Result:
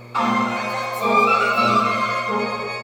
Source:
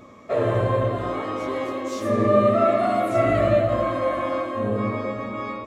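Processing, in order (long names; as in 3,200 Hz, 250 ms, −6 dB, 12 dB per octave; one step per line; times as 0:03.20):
mains hum 60 Hz, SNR 21 dB
on a send: single-tap delay 478 ms −11.5 dB
on the sum: wrong playback speed 7.5 ips tape played at 15 ips
level +2 dB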